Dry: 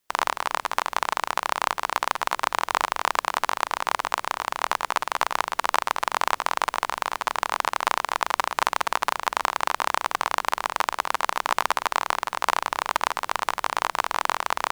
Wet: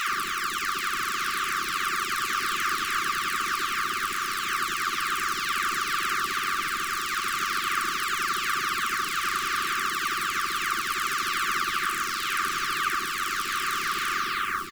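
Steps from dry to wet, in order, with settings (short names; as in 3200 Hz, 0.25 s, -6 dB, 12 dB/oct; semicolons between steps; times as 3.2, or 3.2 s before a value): spectral delay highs early, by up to 0.587 s; in parallel at -2.5 dB: limiter -23.5 dBFS, peak gain reduction 10.5 dB; on the sum: bit-crush 7-bit; brick-wall FIR band-stop 410–1100 Hz; echo 1.188 s -10.5 dB; on a send at -16 dB: reverb RT60 0.45 s, pre-delay 3 ms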